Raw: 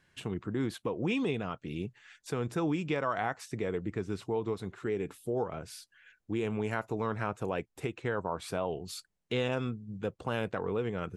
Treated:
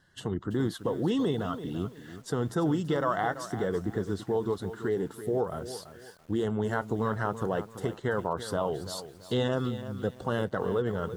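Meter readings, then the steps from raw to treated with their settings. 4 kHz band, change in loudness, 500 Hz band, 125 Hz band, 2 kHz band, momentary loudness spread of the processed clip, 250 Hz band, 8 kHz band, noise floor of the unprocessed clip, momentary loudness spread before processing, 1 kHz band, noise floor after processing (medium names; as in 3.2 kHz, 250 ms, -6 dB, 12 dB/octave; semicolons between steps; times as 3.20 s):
+2.5 dB, +3.5 dB, +4.0 dB, +4.0 dB, +1.0 dB, 8 LU, +4.0 dB, +3.5 dB, -79 dBFS, 8 LU, +3.5 dB, -51 dBFS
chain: coarse spectral quantiser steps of 15 dB; Butterworth band-stop 2.4 kHz, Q 2.4; bit-crushed delay 335 ms, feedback 35%, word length 9-bit, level -12 dB; trim +4 dB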